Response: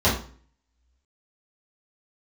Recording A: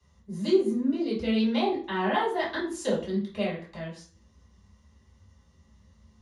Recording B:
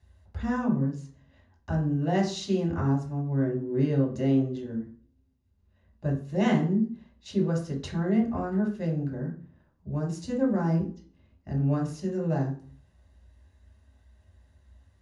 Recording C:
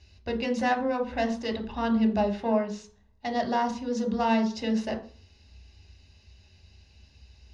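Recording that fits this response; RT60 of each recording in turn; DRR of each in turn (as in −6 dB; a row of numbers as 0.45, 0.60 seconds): A; 0.45, 0.45, 0.45 seconds; −10.0, −1.5, 4.0 decibels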